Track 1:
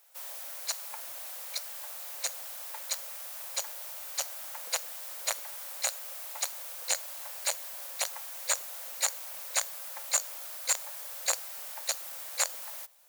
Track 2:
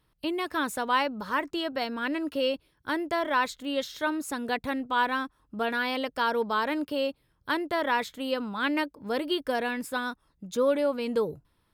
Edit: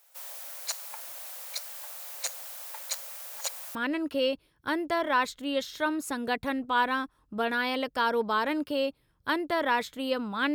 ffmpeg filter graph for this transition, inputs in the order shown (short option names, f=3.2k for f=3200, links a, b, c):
-filter_complex "[0:a]apad=whole_dur=10.54,atrim=end=10.54,asplit=2[a][b];[a]atrim=end=3.302[c];[b]atrim=start=3.298:end=3.752,asetpts=PTS-STARTPTS,areverse[d];[1:a]atrim=start=1.958:end=8.75[e];[c][d]acrossfade=d=0.004:c1=hsin:c2=hsin[f];[f][e]acrossfade=d=0.004:c1=hsin:c2=hsin"